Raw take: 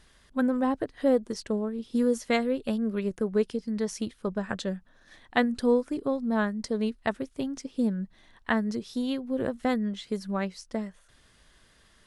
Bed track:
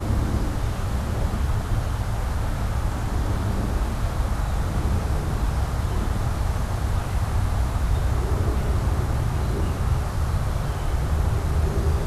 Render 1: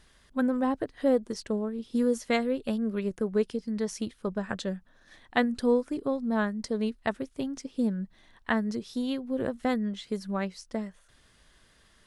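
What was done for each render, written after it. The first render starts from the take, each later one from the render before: trim -1 dB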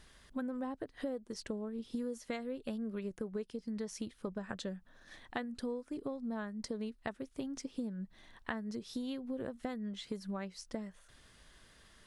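compression 6:1, threshold -37 dBFS, peak gain reduction 17 dB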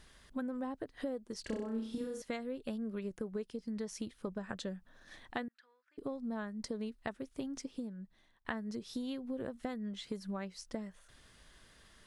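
1.41–2.22 s: flutter echo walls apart 5.4 m, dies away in 0.59 s; 5.48–5.98 s: ladder band-pass 1.9 kHz, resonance 50%; 7.57–8.45 s: fade out, to -21 dB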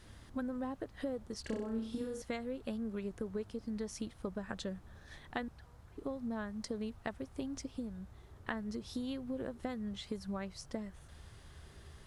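add bed track -33 dB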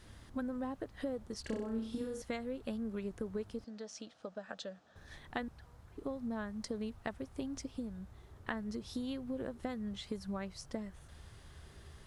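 3.64–4.96 s: cabinet simulation 340–6800 Hz, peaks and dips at 370 Hz -10 dB, 640 Hz +4 dB, 1 kHz -8 dB, 2.1 kHz -7 dB

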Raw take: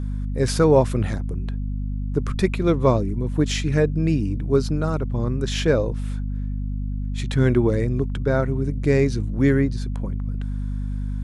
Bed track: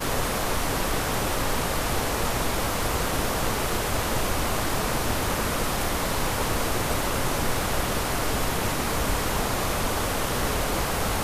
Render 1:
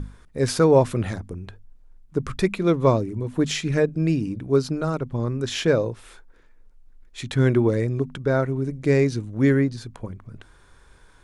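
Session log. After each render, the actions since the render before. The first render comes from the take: hum notches 50/100/150/200/250 Hz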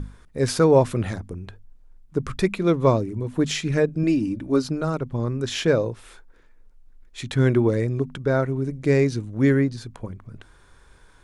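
4.03–4.64 s: comb 3.4 ms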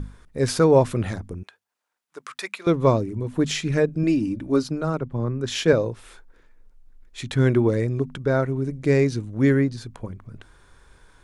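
1.43–2.67 s: high-pass 970 Hz; 4.63–5.73 s: three bands expanded up and down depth 40%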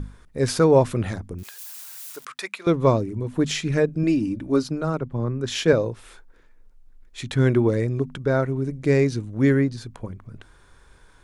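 1.38–2.25 s: zero-crossing glitches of -32 dBFS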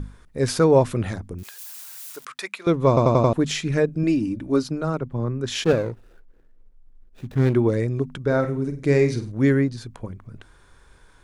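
2.88 s: stutter in place 0.09 s, 5 plays; 5.64–7.55 s: median filter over 41 samples; 8.20–9.32 s: flutter echo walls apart 8.4 m, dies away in 0.33 s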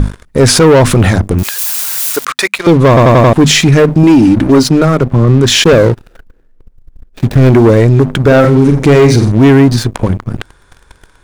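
waveshaping leveller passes 3; loudness maximiser +12.5 dB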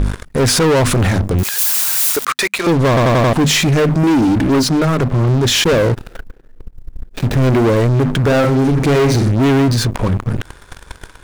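peak limiter -9.5 dBFS, peak gain reduction 8.5 dB; waveshaping leveller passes 2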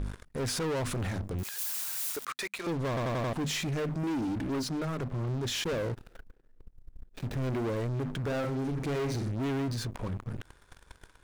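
trim -19 dB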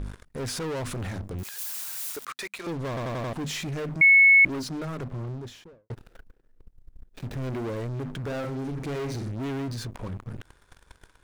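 4.01–4.45 s: bleep 2.2 kHz -12 dBFS; 5.04–5.90 s: studio fade out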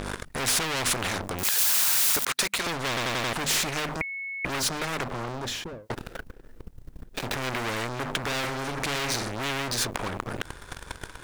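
upward compressor, threshold -47 dBFS; spectrum-flattening compressor 4:1

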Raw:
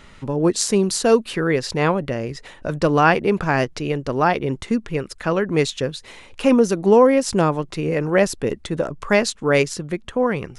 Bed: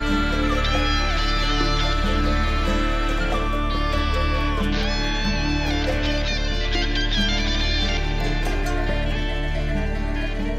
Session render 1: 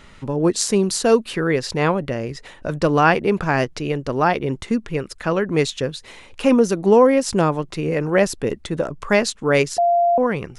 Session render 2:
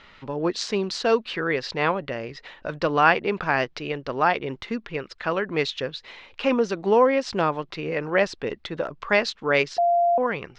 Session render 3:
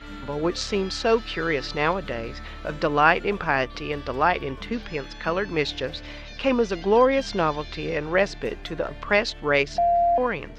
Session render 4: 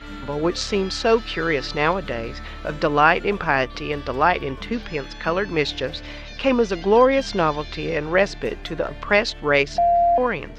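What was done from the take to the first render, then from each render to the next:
9.78–10.18 s: bleep 692 Hz -13 dBFS
low-pass 4.6 kHz 24 dB/octave; bass shelf 430 Hz -12 dB
add bed -17.5 dB
trim +3 dB; peak limiter -2 dBFS, peak gain reduction 2 dB

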